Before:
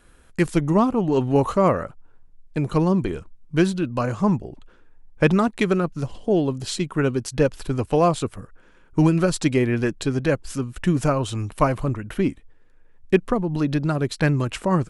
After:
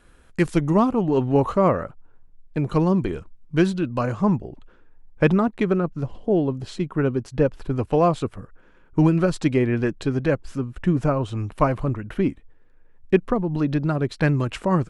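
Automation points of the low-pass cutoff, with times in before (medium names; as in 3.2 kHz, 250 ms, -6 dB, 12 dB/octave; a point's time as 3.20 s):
low-pass 6 dB/octave
6.4 kHz
from 1.03 s 2.6 kHz
from 2.69 s 4.6 kHz
from 4.13 s 2.8 kHz
from 5.33 s 1.3 kHz
from 7.76 s 2.4 kHz
from 10.50 s 1.4 kHz
from 11.37 s 2.5 kHz
from 14.21 s 4.2 kHz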